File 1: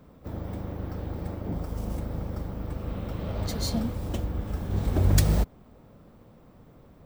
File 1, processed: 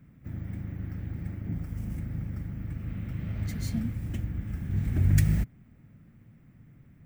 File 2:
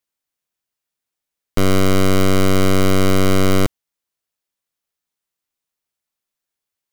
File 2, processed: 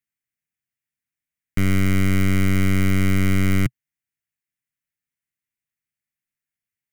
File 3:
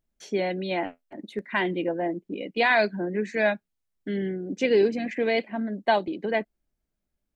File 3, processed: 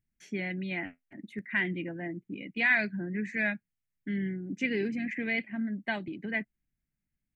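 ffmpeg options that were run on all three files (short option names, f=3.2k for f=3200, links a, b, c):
-af "equalizer=f=125:t=o:w=1:g=10,equalizer=f=250:t=o:w=1:g=3,equalizer=f=500:t=o:w=1:g=-11,equalizer=f=1k:t=o:w=1:g=-10,equalizer=f=2k:t=o:w=1:g=11,equalizer=f=4k:t=o:w=1:g=-9,volume=-6dB"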